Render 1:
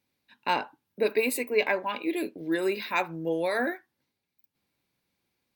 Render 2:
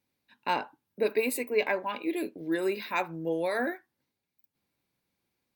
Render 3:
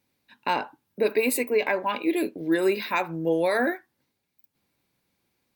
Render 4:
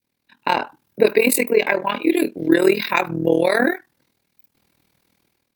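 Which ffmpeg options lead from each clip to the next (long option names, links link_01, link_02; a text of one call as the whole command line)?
ffmpeg -i in.wav -af "equalizer=frequency=3400:width=0.63:gain=-2.5,volume=-1.5dB" out.wav
ffmpeg -i in.wav -af "alimiter=limit=-19.5dB:level=0:latency=1:release=114,volume=6.5dB" out.wav
ffmpeg -i in.wav -af "tremolo=f=40:d=0.857,dynaudnorm=framelen=170:gausssize=5:maxgain=12dB,adynamicequalizer=threshold=0.0355:dfrequency=820:dqfactor=0.72:tfrequency=820:tqfactor=0.72:attack=5:release=100:ratio=0.375:range=2.5:mode=cutabove:tftype=bell,volume=1.5dB" out.wav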